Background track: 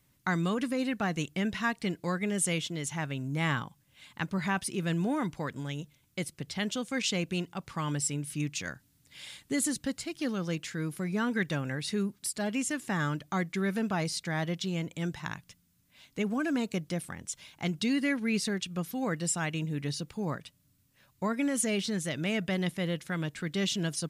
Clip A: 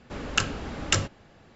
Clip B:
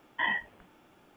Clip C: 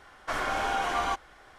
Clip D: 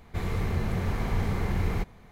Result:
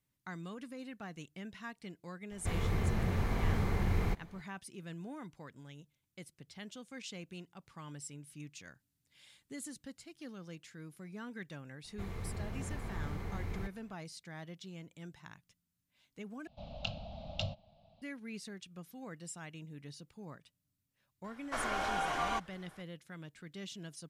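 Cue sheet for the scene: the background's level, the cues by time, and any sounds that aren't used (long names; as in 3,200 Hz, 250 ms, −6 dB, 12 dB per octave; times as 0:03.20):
background track −15.5 dB
0:02.31: mix in D −4 dB
0:11.84: mix in D −12.5 dB
0:16.47: overwrite with A −9.5 dB + drawn EQ curve 200 Hz 0 dB, 400 Hz −29 dB, 640 Hz +10 dB, 990 Hz −10 dB, 1,800 Hz −27 dB, 2,600 Hz −5 dB, 4,000 Hz +2 dB, 7,500 Hz −26 dB
0:21.24: mix in C −6 dB
not used: B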